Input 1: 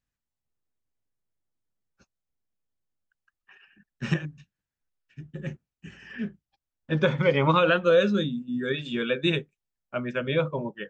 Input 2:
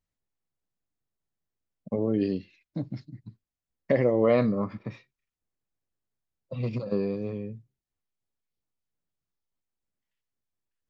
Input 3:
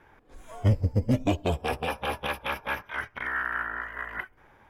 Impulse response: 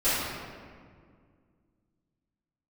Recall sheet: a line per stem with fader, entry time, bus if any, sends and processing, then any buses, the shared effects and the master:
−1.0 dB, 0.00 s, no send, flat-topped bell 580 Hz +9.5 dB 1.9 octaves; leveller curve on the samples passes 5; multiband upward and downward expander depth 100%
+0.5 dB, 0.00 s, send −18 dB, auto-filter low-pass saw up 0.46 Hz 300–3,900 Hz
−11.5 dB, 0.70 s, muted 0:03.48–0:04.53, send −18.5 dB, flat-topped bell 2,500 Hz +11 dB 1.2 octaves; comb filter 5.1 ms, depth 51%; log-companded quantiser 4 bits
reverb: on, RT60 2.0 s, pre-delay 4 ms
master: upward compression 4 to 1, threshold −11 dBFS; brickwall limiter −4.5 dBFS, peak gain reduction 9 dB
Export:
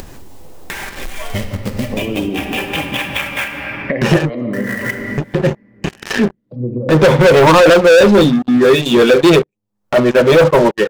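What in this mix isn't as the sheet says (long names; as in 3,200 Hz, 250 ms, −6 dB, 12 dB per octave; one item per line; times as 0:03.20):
stem 1: missing multiband upward and downward expander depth 100%
stem 2 +0.5 dB → −9.5 dB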